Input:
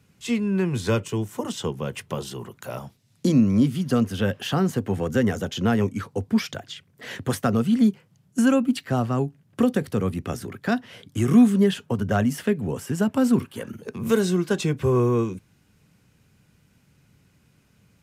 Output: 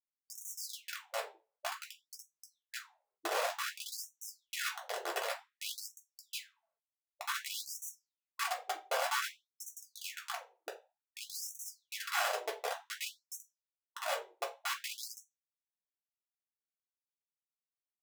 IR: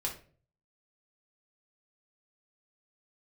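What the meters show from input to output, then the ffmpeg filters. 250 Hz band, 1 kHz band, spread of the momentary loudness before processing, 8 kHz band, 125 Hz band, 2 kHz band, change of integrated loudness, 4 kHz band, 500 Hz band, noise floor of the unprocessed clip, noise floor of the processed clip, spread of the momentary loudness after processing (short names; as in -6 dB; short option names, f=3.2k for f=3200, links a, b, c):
under -40 dB, -7.0 dB, 14 LU, -4.0 dB, under -40 dB, -6.5 dB, -16.0 dB, -5.5 dB, -18.0 dB, -62 dBFS, under -85 dBFS, 15 LU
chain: -filter_complex "[0:a]highpass=f=56:w=0.5412,highpass=f=56:w=1.3066,afwtdn=0.0282,agate=range=-7dB:threshold=-44dB:ratio=16:detection=peak,equalizer=f=200:w=0.47:g=-6,acompressor=threshold=-34dB:ratio=4,aresample=16000,aeval=exprs='sgn(val(0))*max(abs(val(0))-0.002,0)':c=same,aresample=44100,flanger=delay=3.3:depth=6.3:regen=-18:speed=0.19:shape=sinusoidal,aecho=1:1:58|74:0.562|0.316,acrossover=split=170[a][b];[b]asoftclip=type=tanh:threshold=-38.5dB[c];[a][c]amix=inputs=2:normalize=0,acrusher=bits=5:mix=0:aa=0.000001[d];[1:a]atrim=start_sample=2205,asetrate=61740,aresample=44100[e];[d][e]afir=irnorm=-1:irlink=0,afftfilt=real='re*gte(b*sr/1024,340*pow(5700/340,0.5+0.5*sin(2*PI*0.54*pts/sr)))':imag='im*gte(b*sr/1024,340*pow(5700/340,0.5+0.5*sin(2*PI*0.54*pts/sr)))':win_size=1024:overlap=0.75,volume=10.5dB"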